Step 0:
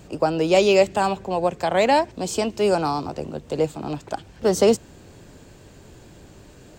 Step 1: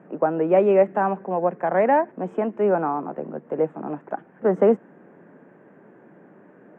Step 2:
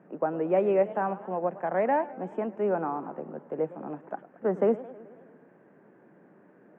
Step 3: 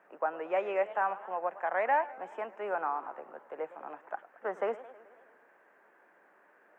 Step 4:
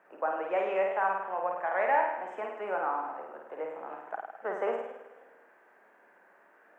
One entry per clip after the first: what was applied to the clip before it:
elliptic band-pass 180–1800 Hz, stop band 40 dB
warbling echo 0.107 s, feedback 64%, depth 211 cents, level -18 dB; gain -7 dB
HPF 980 Hz 12 dB/oct; gain +4 dB
flutter echo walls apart 8.9 m, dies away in 0.82 s

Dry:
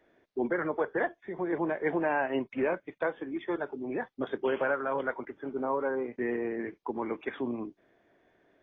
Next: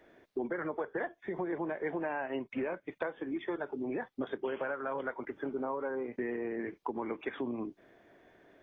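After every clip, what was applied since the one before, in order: compressor 5:1, threshold -39 dBFS, peak gain reduction 13.5 dB; gain +5.5 dB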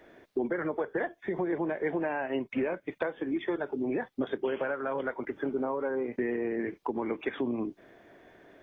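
dynamic EQ 1100 Hz, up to -4 dB, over -47 dBFS, Q 1.1; gain +5.5 dB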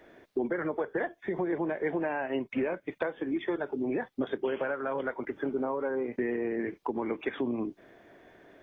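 nothing audible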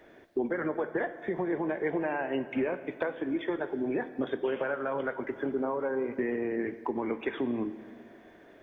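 plate-style reverb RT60 2.1 s, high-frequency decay 0.8×, DRR 11 dB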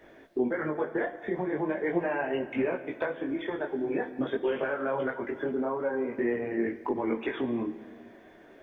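detuned doubles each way 15 cents; gain +5 dB

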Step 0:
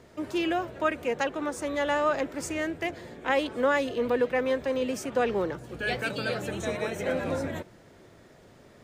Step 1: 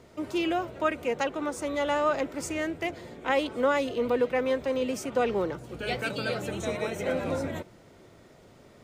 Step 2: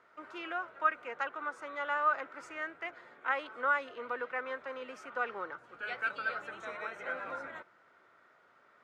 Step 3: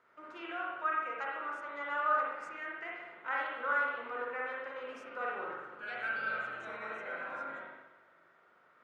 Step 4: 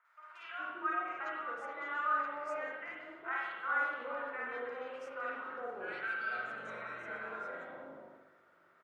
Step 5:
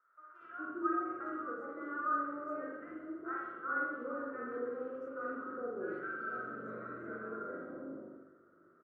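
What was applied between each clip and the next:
notch 1700 Hz, Q 10
band-pass 1400 Hz, Q 3.4; gain +3.5 dB
spring tank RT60 1.1 s, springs 41/59 ms, chirp 60 ms, DRR -3.5 dB; gain -6 dB
three bands offset in time mids, highs, lows 50/410 ms, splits 850/2700 Hz
EQ curve 170 Hz 0 dB, 320 Hz +7 dB, 530 Hz -4 dB, 890 Hz -20 dB, 1300 Hz -4 dB, 2400 Hz -29 dB; gain +5.5 dB

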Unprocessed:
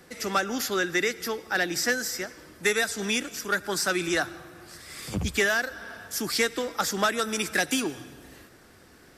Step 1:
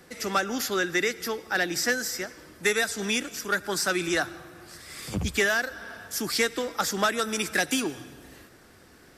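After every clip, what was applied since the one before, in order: nothing audible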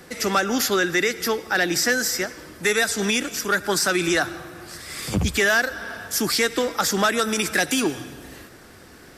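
limiter -19 dBFS, peak gain reduction 5.5 dB; gain +7.5 dB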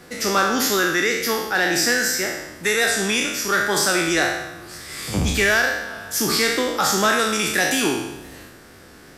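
spectral trails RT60 0.92 s; wow and flutter 27 cents; gain -1.5 dB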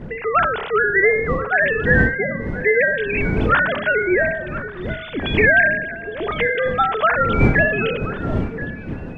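sine-wave speech; wind noise 230 Hz -27 dBFS; delay with a stepping band-pass 0.342 s, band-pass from 200 Hz, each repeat 1.4 oct, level -8 dB; gain +1.5 dB

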